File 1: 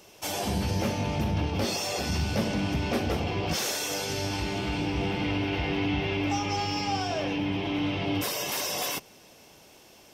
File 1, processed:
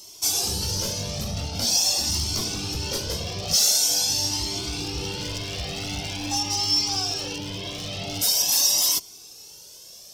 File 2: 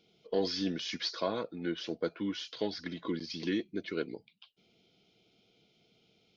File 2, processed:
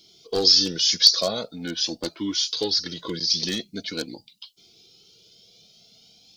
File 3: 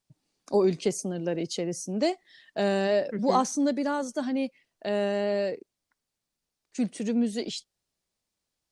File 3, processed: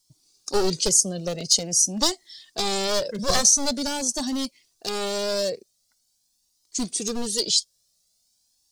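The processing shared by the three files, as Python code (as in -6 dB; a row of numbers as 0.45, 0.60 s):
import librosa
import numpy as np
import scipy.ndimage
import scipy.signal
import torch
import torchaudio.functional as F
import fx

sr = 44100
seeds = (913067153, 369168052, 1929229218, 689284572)

y = np.minimum(x, 2.0 * 10.0 ** (-24.0 / 20.0) - x)
y = fx.high_shelf_res(y, sr, hz=3300.0, db=14.0, q=1.5)
y = fx.comb_cascade(y, sr, direction='rising', hz=0.45)
y = y * 10.0 ** (-26 / 20.0) / np.sqrt(np.mean(np.square(y)))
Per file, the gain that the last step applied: +1.5, +11.0, +6.5 dB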